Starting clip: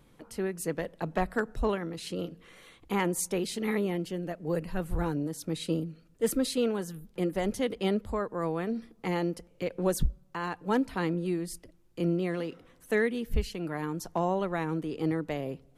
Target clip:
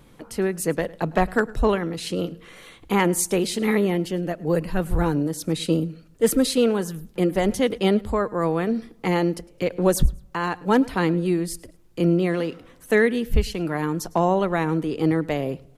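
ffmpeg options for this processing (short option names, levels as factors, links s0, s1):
-af "aecho=1:1:106|212:0.0708|0.0184,volume=2.66"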